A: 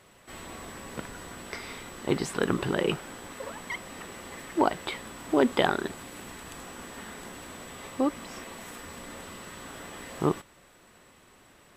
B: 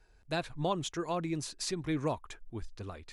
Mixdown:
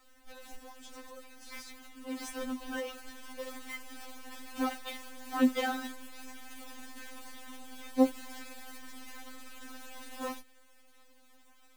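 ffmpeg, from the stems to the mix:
-filter_complex "[0:a]asoftclip=type=hard:threshold=-18dB,acrusher=bits=7:dc=4:mix=0:aa=0.000001,volume=-2.5dB[a];[1:a]alimiter=level_in=4.5dB:limit=-24dB:level=0:latency=1:release=23,volume=-4.5dB,acompressor=threshold=-48dB:ratio=4,volume=0dB,asplit=2[b][c];[c]apad=whole_len=519053[d];[a][d]sidechaincompress=threshold=-52dB:ratio=8:attack=16:release=206[e];[e][b]amix=inputs=2:normalize=0,afftfilt=real='re*3.46*eq(mod(b,12),0)':imag='im*3.46*eq(mod(b,12),0)':win_size=2048:overlap=0.75"

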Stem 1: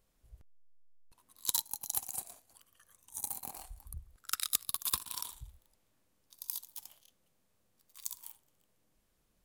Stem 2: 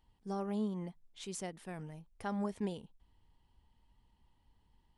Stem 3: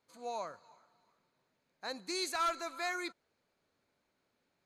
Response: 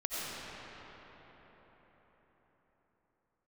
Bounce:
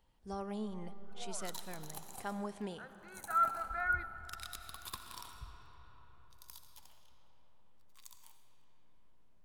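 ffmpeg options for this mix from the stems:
-filter_complex "[0:a]alimiter=limit=-17.5dB:level=0:latency=1:release=223,lowpass=f=2.2k:p=1,volume=-3dB,asplit=2[a][b];[b]volume=-8dB[c];[1:a]lowshelf=f=430:g=-7,volume=-0.5dB,asplit=3[d][e][f];[e]volume=-18.5dB[g];[2:a]lowpass=f=1.5k:t=q:w=8.9,aecho=1:1:1.5:0.47,adelay=950,volume=-9.5dB,asplit=2[h][i];[i]volume=-21dB[j];[f]apad=whole_len=247167[k];[h][k]sidechaincompress=threshold=-47dB:ratio=8:attack=16:release=1360[l];[3:a]atrim=start_sample=2205[m];[c][g][j]amix=inputs=3:normalize=0[n];[n][m]afir=irnorm=-1:irlink=0[o];[a][d][l][o]amix=inputs=4:normalize=0"

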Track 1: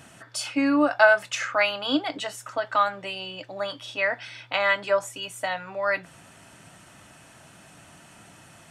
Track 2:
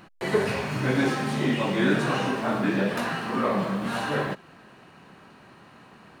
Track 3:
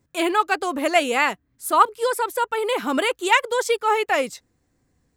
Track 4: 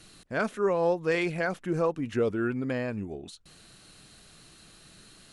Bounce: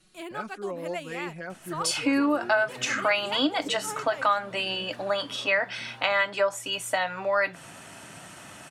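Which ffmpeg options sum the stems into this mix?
-filter_complex "[0:a]lowshelf=f=100:g=-11,dynaudnorm=f=180:g=3:m=8dB,adelay=1500,volume=-2dB[a];[1:a]alimiter=limit=-17.5dB:level=0:latency=1,asplit=2[b][c];[c]adelay=6.3,afreqshift=-0.68[d];[b][d]amix=inputs=2:normalize=1,adelay=1950,volume=-17dB[e];[2:a]volume=-17.5dB[f];[3:a]aecho=1:1:5.4:0.81,volume=-12dB[g];[a][e][f][g]amix=inputs=4:normalize=0,acompressor=threshold=-24dB:ratio=2"

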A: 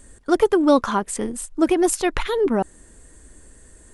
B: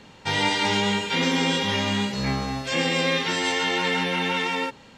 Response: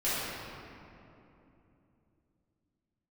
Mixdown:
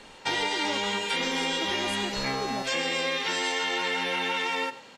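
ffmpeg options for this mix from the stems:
-filter_complex "[0:a]volume=-15dB[a];[1:a]highpass=81,bass=f=250:g=-13,treble=f=4k:g=1,volume=1.5dB,asplit=2[b][c];[c]volume=-18dB,aecho=0:1:98:1[d];[a][b][d]amix=inputs=3:normalize=0,acompressor=threshold=-25dB:ratio=6"

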